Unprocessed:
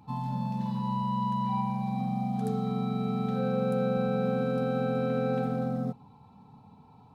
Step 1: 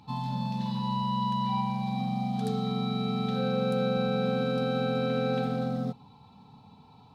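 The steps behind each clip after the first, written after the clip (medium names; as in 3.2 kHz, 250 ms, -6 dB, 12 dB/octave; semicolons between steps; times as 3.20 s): peaking EQ 3.9 kHz +12 dB 1.3 oct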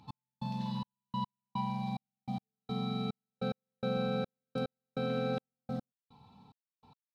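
trance gate "x...xxxx..." 145 bpm -60 dB; trim -5 dB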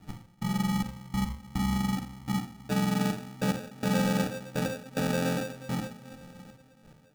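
two-slope reverb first 0.55 s, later 3.6 s, from -18 dB, DRR 1.5 dB; sample-and-hold 42×; trim +5.5 dB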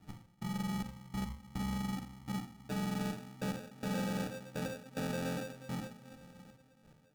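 valve stage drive 23 dB, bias 0.25; trim -6.5 dB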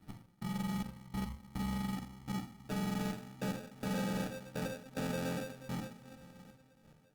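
Opus 24 kbps 48 kHz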